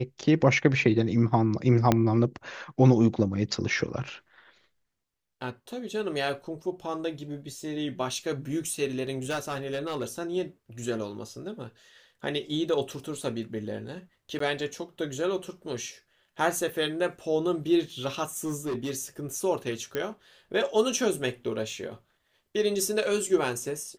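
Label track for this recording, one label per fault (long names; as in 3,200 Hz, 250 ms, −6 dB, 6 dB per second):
1.920000	1.920000	click −7 dBFS
9.290000	10.040000	clipping −26 dBFS
14.390000	14.400000	drop-out
18.370000	18.910000	clipping −27 dBFS
19.950000	19.950000	click −16 dBFS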